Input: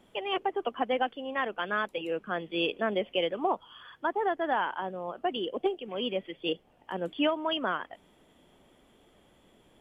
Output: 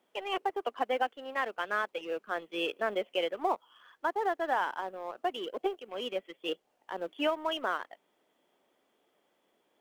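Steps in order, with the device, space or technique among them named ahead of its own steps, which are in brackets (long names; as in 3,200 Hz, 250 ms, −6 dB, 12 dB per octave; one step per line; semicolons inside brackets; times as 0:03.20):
phone line with mismatched companding (band-pass filter 370–3,200 Hz; mu-law and A-law mismatch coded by A)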